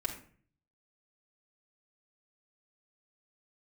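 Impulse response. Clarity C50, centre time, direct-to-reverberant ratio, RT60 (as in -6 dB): 9.0 dB, 15 ms, -1.0 dB, not exponential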